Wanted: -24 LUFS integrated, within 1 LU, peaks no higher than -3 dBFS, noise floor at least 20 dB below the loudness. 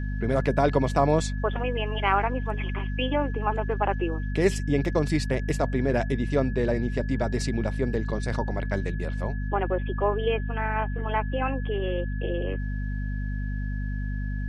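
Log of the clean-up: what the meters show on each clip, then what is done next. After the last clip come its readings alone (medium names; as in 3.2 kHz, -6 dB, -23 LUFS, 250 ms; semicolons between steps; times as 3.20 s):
hum 50 Hz; highest harmonic 250 Hz; hum level -27 dBFS; steady tone 1.7 kHz; tone level -42 dBFS; loudness -27.0 LUFS; peak level -8.0 dBFS; loudness target -24.0 LUFS
-> hum notches 50/100/150/200/250 Hz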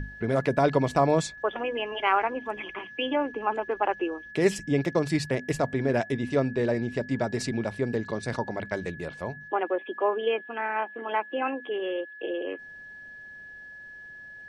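hum not found; steady tone 1.7 kHz; tone level -42 dBFS
-> band-stop 1.7 kHz, Q 30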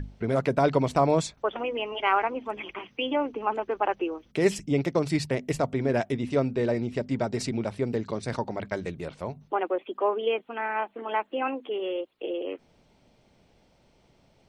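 steady tone not found; loudness -28.5 LUFS; peak level -9.0 dBFS; loudness target -24.0 LUFS
-> trim +4.5 dB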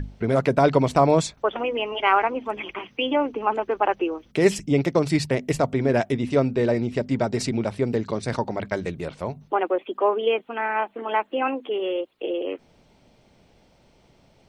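loudness -24.0 LUFS; peak level -4.5 dBFS; noise floor -59 dBFS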